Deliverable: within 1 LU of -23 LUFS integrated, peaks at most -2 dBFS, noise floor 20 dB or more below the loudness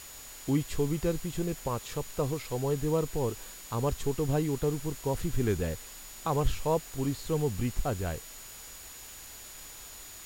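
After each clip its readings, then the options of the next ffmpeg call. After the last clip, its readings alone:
steady tone 6900 Hz; tone level -50 dBFS; noise floor -47 dBFS; noise floor target -52 dBFS; loudness -32.0 LUFS; peak -14.5 dBFS; loudness target -23.0 LUFS
-> -af "bandreject=f=6.9k:w=30"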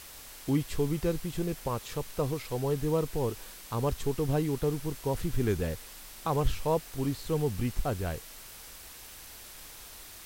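steady tone none; noise floor -48 dBFS; noise floor target -52 dBFS
-> -af "afftdn=nr=6:nf=-48"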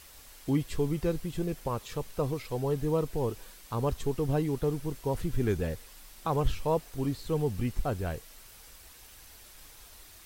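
noise floor -53 dBFS; loudness -32.0 LUFS; peak -15.0 dBFS; loudness target -23.0 LUFS
-> -af "volume=9dB"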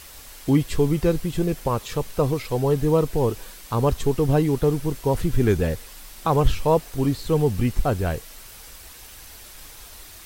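loudness -23.0 LUFS; peak -6.0 dBFS; noise floor -44 dBFS

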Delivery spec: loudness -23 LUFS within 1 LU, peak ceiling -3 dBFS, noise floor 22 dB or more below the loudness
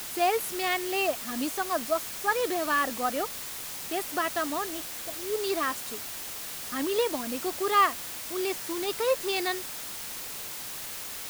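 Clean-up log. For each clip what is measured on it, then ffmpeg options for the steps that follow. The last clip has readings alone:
noise floor -38 dBFS; noise floor target -52 dBFS; loudness -29.5 LUFS; peak -10.5 dBFS; loudness target -23.0 LUFS
-> -af "afftdn=nr=14:nf=-38"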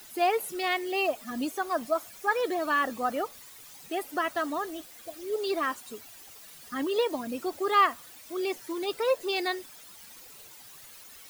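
noise floor -50 dBFS; noise floor target -52 dBFS
-> -af "afftdn=nr=6:nf=-50"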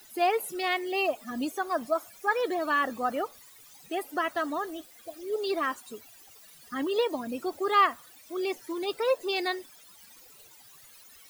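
noise floor -54 dBFS; loudness -29.5 LUFS; peak -11.5 dBFS; loudness target -23.0 LUFS
-> -af "volume=6.5dB"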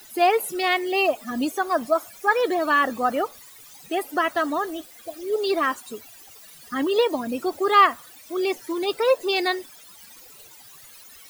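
loudness -23.0 LUFS; peak -5.0 dBFS; noise floor -47 dBFS

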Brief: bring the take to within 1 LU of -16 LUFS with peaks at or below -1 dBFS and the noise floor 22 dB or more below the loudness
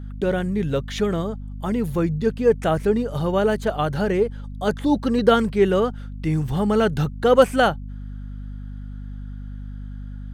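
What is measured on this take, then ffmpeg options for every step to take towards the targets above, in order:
hum 50 Hz; harmonics up to 250 Hz; hum level -31 dBFS; loudness -21.5 LUFS; peak -2.5 dBFS; loudness target -16.0 LUFS
-> -af "bandreject=f=50:t=h:w=6,bandreject=f=100:t=h:w=6,bandreject=f=150:t=h:w=6,bandreject=f=200:t=h:w=6,bandreject=f=250:t=h:w=6"
-af "volume=5.5dB,alimiter=limit=-1dB:level=0:latency=1"

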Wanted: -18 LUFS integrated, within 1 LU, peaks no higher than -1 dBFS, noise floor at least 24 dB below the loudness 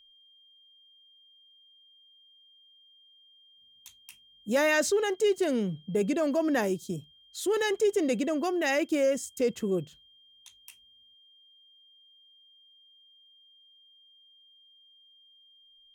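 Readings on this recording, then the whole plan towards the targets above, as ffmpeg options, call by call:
steady tone 3200 Hz; tone level -57 dBFS; loudness -28.0 LUFS; peak -16.0 dBFS; loudness target -18.0 LUFS
-> -af "bandreject=f=3.2k:w=30"
-af "volume=10dB"

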